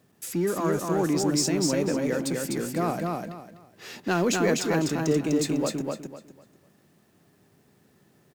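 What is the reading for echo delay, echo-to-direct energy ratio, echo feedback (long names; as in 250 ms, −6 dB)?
250 ms, −2.5 dB, 26%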